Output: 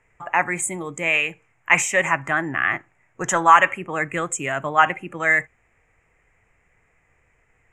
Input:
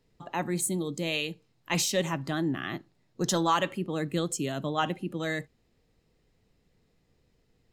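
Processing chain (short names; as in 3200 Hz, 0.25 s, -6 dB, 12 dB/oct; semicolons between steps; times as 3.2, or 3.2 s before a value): EQ curve 100 Hz 0 dB, 210 Hz -9 dB, 490 Hz -1 dB, 710 Hz +6 dB, 2300 Hz +15 dB, 4300 Hz -25 dB, 7200 Hz +6 dB, 15000 Hz -17 dB; gain +4.5 dB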